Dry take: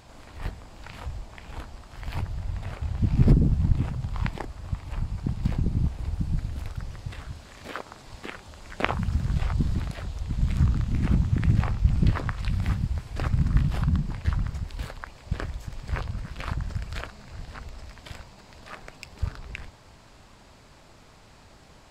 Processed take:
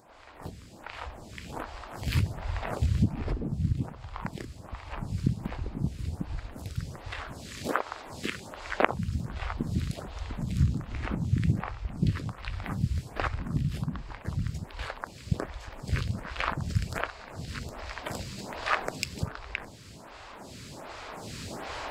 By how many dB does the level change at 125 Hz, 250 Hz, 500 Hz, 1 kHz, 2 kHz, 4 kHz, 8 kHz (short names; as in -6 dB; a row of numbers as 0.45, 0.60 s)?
-4.5 dB, -3.0 dB, +2.5 dB, +3.5 dB, +3.0 dB, +2.5 dB, n/a